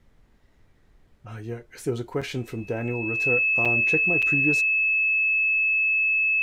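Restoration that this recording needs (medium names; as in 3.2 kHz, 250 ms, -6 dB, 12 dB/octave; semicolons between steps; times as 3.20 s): band-stop 2.6 kHz, Q 30; interpolate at 2.21/3.65/4.22 s, 5.9 ms; expander -50 dBFS, range -21 dB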